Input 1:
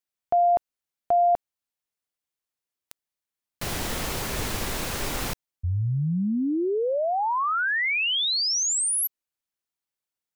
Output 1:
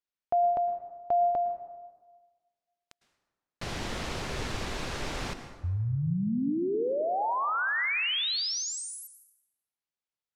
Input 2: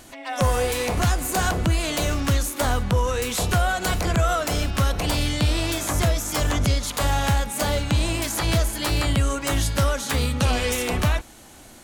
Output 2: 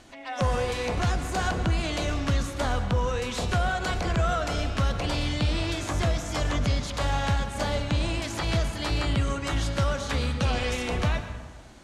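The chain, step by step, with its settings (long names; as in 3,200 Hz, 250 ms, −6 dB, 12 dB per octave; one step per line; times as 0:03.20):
low-pass filter 5,600 Hz 12 dB per octave
dense smooth reverb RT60 1.4 s, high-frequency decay 0.55×, pre-delay 95 ms, DRR 9 dB
level −4.5 dB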